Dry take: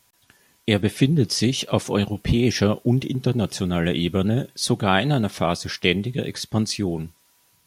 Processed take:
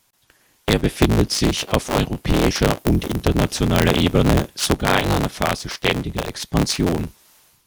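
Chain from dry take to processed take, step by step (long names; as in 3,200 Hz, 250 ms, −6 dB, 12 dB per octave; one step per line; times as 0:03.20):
sub-harmonics by changed cycles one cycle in 3, inverted
0:02.78–0:03.24: high-shelf EQ 10,000 Hz +9 dB
automatic gain control gain up to 11.5 dB
level −1 dB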